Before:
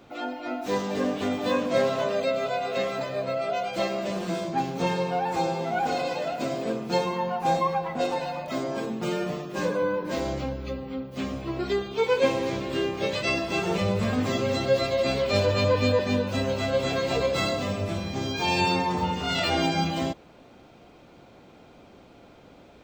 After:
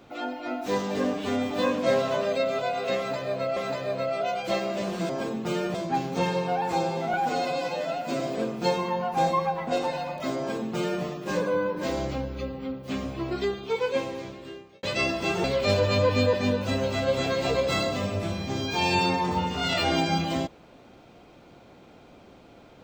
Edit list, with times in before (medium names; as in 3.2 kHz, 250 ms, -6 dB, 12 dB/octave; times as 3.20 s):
1.13–1.38 s: stretch 1.5×
2.85–3.44 s: loop, 2 plays
5.77–6.48 s: stretch 1.5×
8.66–9.31 s: copy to 4.38 s
11.53–13.11 s: fade out
13.72–15.10 s: delete